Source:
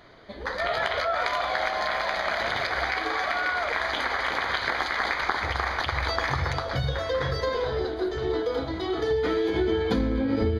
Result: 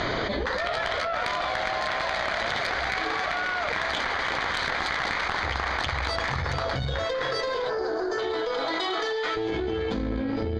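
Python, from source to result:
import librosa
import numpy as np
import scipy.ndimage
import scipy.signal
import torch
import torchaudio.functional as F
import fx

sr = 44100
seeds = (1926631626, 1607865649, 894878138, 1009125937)

y = fx.highpass(x, sr, hz=fx.line((7.04, 280.0), (9.35, 860.0)), slope=12, at=(7.04, 9.35), fade=0.02)
y = fx.spec_box(y, sr, start_s=7.69, length_s=0.5, low_hz=1800.0, high_hz=4300.0, gain_db=-15)
y = scipy.signal.sosfilt(scipy.signal.cheby1(4, 1.0, 7300.0, 'lowpass', fs=sr, output='sos'), y)
y = fx.tube_stage(y, sr, drive_db=18.0, bias=0.7)
y = fx.env_flatten(y, sr, amount_pct=100)
y = y * librosa.db_to_amplitude(-2.0)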